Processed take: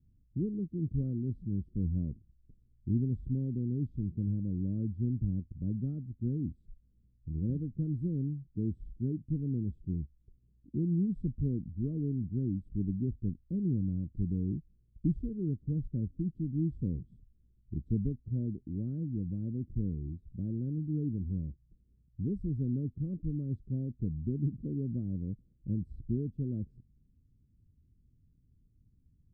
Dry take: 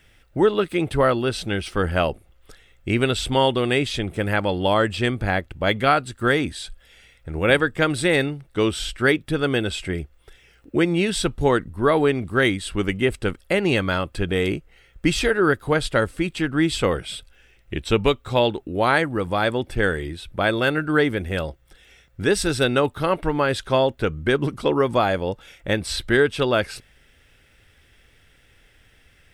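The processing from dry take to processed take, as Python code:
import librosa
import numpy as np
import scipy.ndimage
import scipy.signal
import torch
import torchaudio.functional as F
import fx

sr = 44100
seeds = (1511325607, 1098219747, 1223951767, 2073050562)

y = scipy.signal.sosfilt(scipy.signal.cheby2(4, 60, 780.0, 'lowpass', fs=sr, output='sos'), x)
y = fx.low_shelf(y, sr, hz=61.0, db=-9.5)
y = y * librosa.db_to_amplitude(-2.5)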